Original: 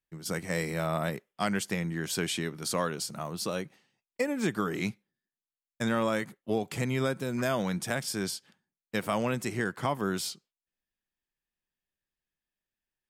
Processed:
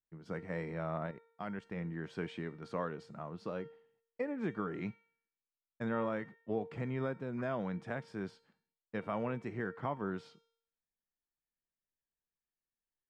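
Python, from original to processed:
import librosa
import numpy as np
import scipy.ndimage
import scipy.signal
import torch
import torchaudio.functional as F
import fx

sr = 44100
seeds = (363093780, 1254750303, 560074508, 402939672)

y = scipy.signal.sosfilt(scipy.signal.butter(2, 1700.0, 'lowpass', fs=sr, output='sos'), x)
y = fx.level_steps(y, sr, step_db=11, at=(1.06, 1.77))
y = fx.comb_fb(y, sr, f0_hz=460.0, decay_s=0.64, harmonics='all', damping=0.0, mix_pct=70)
y = y * 10.0 ** (3.0 / 20.0)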